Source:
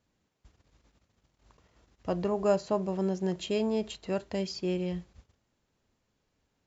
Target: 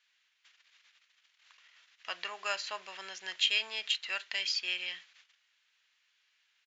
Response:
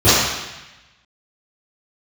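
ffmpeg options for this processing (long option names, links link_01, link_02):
-af "highpass=frequency=1700:width_type=q:width=1.7,aresample=16000,aresample=44100,equalizer=frequency=3100:width=0.85:gain=11.5"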